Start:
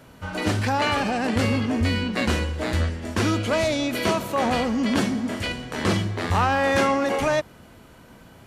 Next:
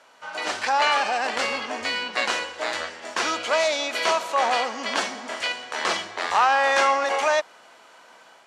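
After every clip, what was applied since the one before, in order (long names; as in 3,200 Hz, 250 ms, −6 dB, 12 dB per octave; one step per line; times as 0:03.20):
Chebyshev band-pass filter 760–6,900 Hz, order 2
automatic gain control gain up to 4 dB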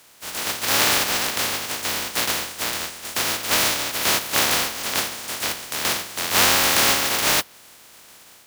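compressing power law on the bin magnitudes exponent 0.13
dynamic equaliser 8,600 Hz, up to −5 dB, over −35 dBFS, Q 1.1
level +3.5 dB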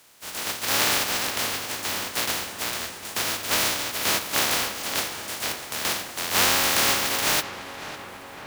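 feedback echo with a low-pass in the loop 553 ms, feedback 73%, low-pass 2,700 Hz, level −11.5 dB
level −3.5 dB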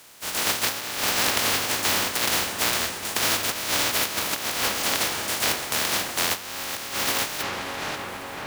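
compressor whose output falls as the input rises −27 dBFS, ratio −0.5
level +3 dB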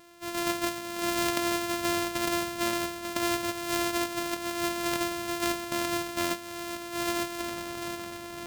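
samples sorted by size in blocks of 128 samples
level −5 dB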